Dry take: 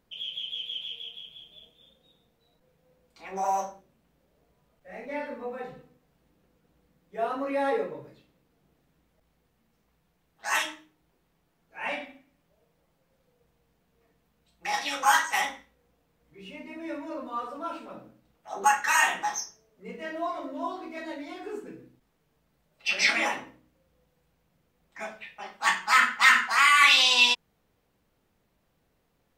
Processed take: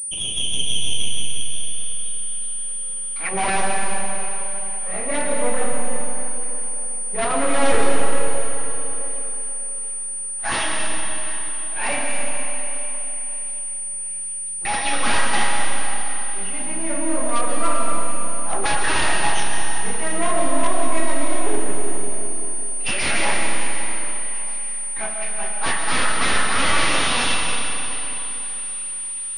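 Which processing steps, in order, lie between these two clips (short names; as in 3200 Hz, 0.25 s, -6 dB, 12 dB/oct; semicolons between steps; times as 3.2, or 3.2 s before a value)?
half-wave gain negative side -12 dB; 1–3.29 band shelf 1700 Hz +9 dB 1.3 oct; in parallel at -1 dB: vocal rider within 5 dB 0.5 s; on the sum: wavefolder -19.5 dBFS; on a send: thin delay 0.737 s, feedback 67%, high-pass 2100 Hz, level -21 dB; on the sum: digital reverb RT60 3.8 s, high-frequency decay 0.8×, pre-delay 80 ms, DRR 0.5 dB; pulse-width modulation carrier 9300 Hz; gain +4.5 dB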